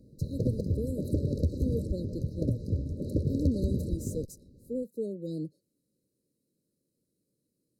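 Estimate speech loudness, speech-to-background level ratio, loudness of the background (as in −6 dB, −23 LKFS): −37.5 LKFS, −5.0 dB, −32.5 LKFS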